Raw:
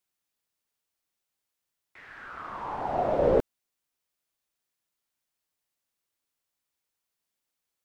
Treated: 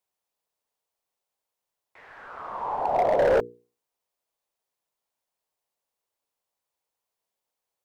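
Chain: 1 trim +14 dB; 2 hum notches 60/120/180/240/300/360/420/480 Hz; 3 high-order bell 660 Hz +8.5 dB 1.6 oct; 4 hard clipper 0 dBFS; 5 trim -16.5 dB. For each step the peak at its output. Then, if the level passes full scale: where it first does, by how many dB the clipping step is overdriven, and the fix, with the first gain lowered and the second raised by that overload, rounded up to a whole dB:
+2.5 dBFS, +2.5 dBFS, +9.5 dBFS, 0.0 dBFS, -16.5 dBFS; step 1, 9.5 dB; step 1 +4 dB, step 5 -6.5 dB

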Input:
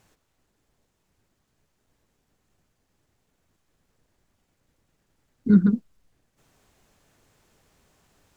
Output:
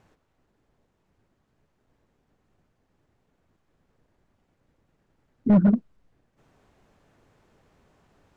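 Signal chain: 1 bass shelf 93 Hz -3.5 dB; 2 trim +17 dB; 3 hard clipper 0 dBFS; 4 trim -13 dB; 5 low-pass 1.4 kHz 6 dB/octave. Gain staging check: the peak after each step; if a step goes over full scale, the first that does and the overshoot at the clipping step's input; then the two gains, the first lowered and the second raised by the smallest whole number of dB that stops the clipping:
-7.5 dBFS, +9.5 dBFS, 0.0 dBFS, -13.0 dBFS, -13.0 dBFS; step 2, 9.5 dB; step 2 +7 dB, step 4 -3 dB

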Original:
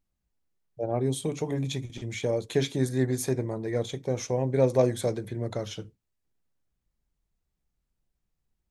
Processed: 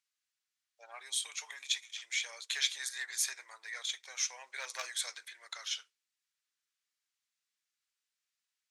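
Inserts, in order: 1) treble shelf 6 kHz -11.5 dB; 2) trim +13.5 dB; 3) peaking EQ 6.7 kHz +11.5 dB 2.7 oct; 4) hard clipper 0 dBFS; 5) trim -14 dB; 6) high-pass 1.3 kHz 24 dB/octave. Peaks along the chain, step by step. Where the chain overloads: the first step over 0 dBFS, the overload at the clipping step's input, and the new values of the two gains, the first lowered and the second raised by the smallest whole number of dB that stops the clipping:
-9.5 dBFS, +4.0 dBFS, +5.0 dBFS, 0.0 dBFS, -14.0 dBFS, -14.0 dBFS; step 2, 5.0 dB; step 2 +8.5 dB, step 5 -9 dB

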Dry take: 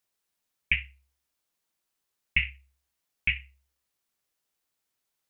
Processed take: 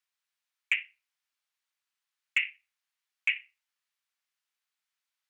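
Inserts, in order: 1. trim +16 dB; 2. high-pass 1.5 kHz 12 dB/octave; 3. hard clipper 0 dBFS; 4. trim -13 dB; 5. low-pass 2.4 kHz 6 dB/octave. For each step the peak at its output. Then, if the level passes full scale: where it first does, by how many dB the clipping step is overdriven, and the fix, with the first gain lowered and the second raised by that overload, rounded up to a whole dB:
+7.5 dBFS, +6.5 dBFS, 0.0 dBFS, -13.0 dBFS, -14.0 dBFS; step 1, 6.5 dB; step 1 +9 dB, step 4 -6 dB

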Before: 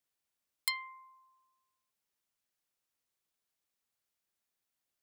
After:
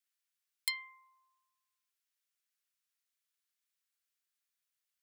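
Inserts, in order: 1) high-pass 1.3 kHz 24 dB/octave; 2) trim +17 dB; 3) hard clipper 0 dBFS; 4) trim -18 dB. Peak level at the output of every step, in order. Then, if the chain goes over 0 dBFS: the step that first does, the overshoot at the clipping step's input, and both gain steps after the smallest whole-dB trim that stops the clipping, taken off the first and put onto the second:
-13.5 dBFS, +3.5 dBFS, 0.0 dBFS, -18.0 dBFS; step 2, 3.5 dB; step 2 +13 dB, step 4 -14 dB

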